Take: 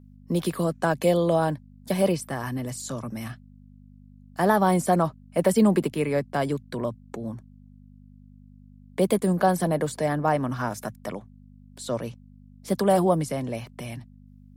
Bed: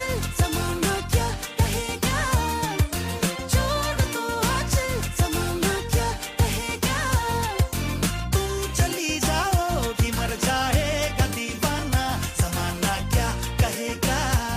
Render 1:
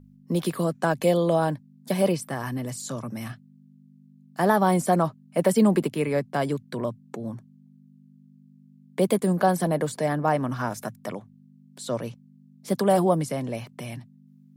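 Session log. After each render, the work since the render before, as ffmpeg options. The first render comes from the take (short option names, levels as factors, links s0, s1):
-af "bandreject=f=50:t=h:w=4,bandreject=f=100:t=h:w=4"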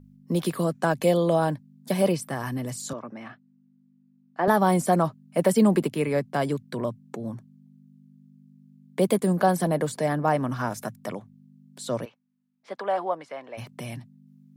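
-filter_complex "[0:a]asettb=1/sr,asplit=3[s0][s1][s2];[s0]atrim=end=2.934[s3];[s1]atrim=start=2.93:end=4.48,asetpts=PTS-STARTPTS,afade=t=in:d=0.004:c=qsin,afade=t=out:st=1.546:d=0.004:c=qsin,highpass=300,lowpass=2200[s4];[s2]atrim=start=4.476[s5];[s3][s4]acrossfade=d=0.004:c1=hsin:c2=qsin[s6];[s6][s5]acrossfade=d=0.004:c1=qsin:c2=hsin,asplit=3[s7][s8][s9];[s7]afade=t=out:st=12.04:d=0.02[s10];[s8]highpass=740,lowpass=2300,afade=t=in:st=12.04:d=0.02,afade=t=out:st=13.57:d=0.02[s11];[s9]afade=t=in:st=13.57:d=0.02[s12];[s10][s11][s12]amix=inputs=3:normalize=0"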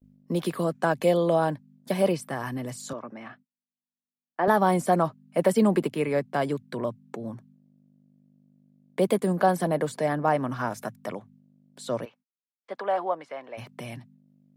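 -af "agate=range=0.0112:threshold=0.00251:ratio=16:detection=peak,bass=f=250:g=-4,treble=f=4000:g=-5"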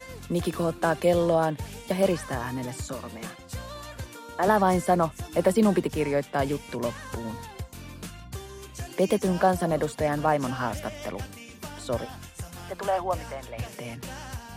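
-filter_complex "[1:a]volume=0.168[s0];[0:a][s0]amix=inputs=2:normalize=0"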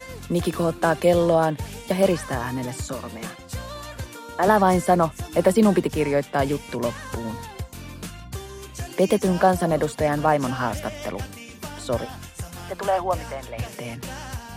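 -af "volume=1.58"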